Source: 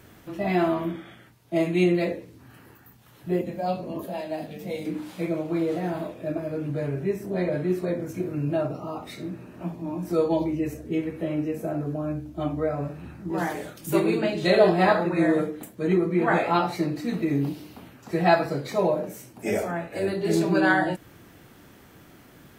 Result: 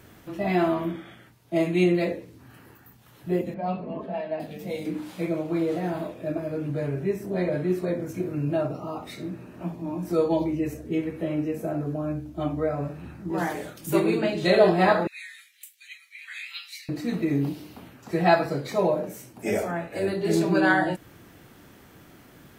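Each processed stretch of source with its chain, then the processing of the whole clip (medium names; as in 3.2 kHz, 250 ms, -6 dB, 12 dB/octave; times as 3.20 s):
3.54–4.40 s: Chebyshev low-pass 2.1 kHz + comb 4.6 ms, depth 50%
15.07–16.89 s: steep high-pass 2.2 kHz + doubling 15 ms -12 dB
whole clip: none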